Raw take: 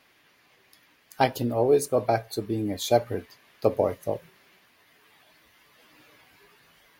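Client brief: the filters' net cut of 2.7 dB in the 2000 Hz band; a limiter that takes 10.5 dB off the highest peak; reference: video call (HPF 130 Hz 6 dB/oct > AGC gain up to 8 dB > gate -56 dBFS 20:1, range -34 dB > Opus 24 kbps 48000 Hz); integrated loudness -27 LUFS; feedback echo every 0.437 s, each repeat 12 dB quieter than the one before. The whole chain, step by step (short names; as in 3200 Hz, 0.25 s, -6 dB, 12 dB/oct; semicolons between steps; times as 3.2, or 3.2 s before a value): bell 2000 Hz -3.5 dB; limiter -18 dBFS; HPF 130 Hz 6 dB/oct; feedback echo 0.437 s, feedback 25%, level -12 dB; AGC gain up to 8 dB; gate -56 dBFS 20:1, range -34 dB; gain +4.5 dB; Opus 24 kbps 48000 Hz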